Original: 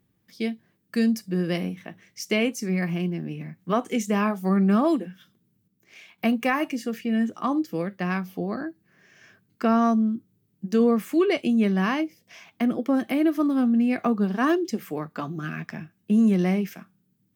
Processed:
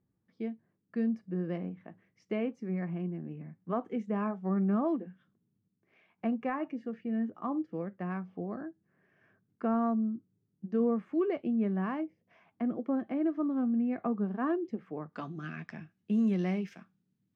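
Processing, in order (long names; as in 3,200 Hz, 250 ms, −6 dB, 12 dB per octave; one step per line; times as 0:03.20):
low-pass filter 1,300 Hz 12 dB per octave, from 0:15.13 4,900 Hz
level −8.5 dB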